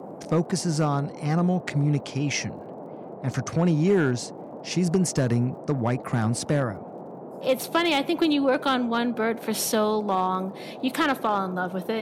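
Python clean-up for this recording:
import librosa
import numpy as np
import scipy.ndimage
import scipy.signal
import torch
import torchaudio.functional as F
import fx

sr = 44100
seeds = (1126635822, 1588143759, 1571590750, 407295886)

y = fx.fix_declip(x, sr, threshold_db=-14.0)
y = fx.fix_declick_ar(y, sr, threshold=6.5)
y = fx.noise_reduce(y, sr, print_start_s=6.84, print_end_s=7.34, reduce_db=30.0)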